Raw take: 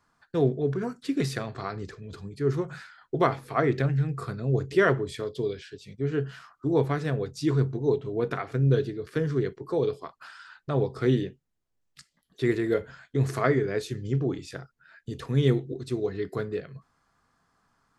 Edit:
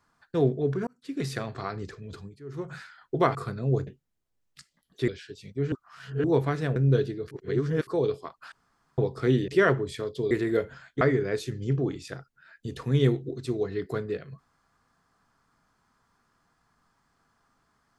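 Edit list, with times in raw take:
0.87–1.42 s: fade in
2.16–2.74 s: dip -16.5 dB, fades 0.25 s
3.35–4.16 s: delete
4.68–5.51 s: swap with 11.27–12.48 s
6.15–6.67 s: reverse
7.19–8.55 s: delete
9.10–9.66 s: reverse
10.31–10.77 s: room tone
13.18–13.44 s: delete

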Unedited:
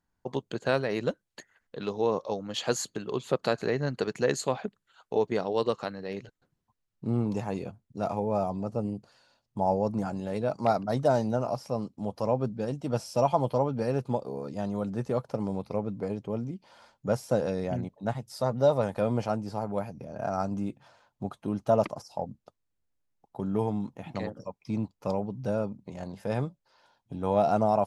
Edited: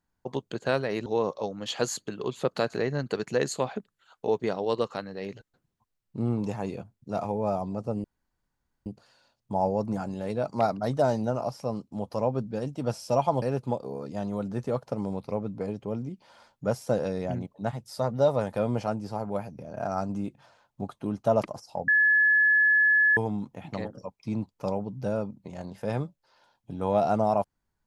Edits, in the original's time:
1.06–1.94 s: delete
8.92 s: insert room tone 0.82 s
13.48–13.84 s: delete
22.30–23.59 s: bleep 1.71 kHz -17.5 dBFS

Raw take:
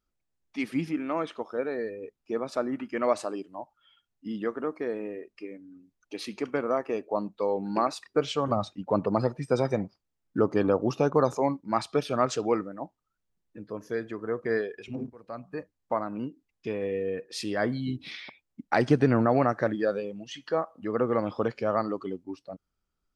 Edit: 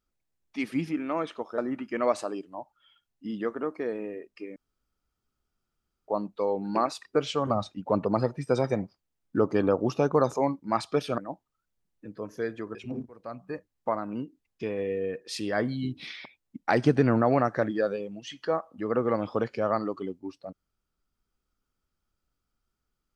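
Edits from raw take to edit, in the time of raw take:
1.58–2.59 s: delete
5.57–7.09 s: room tone
12.19–12.70 s: delete
14.27–14.79 s: delete

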